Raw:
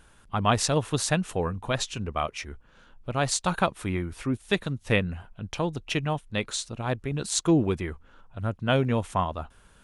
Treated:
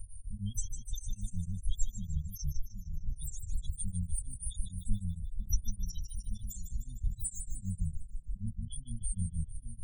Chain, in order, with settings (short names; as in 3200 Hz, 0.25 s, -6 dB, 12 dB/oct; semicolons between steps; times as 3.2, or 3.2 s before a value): inverse Chebyshev band-stop 260–1200 Hz, stop band 80 dB; treble ducked by the level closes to 1800 Hz, closed at -31 dBFS; EQ curve 110 Hz 0 dB, 190 Hz -15 dB, 350 Hz +12 dB, 560 Hz -25 dB, 2300 Hz -1 dB, 4900 Hz -4 dB, 9500 Hz +7 dB; harmoniser +12 st -5 dB; loudest bins only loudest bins 8; split-band echo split 970 Hz, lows 0.773 s, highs 0.151 s, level -8.5 dB; beating tremolo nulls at 6.5 Hz; gain +18 dB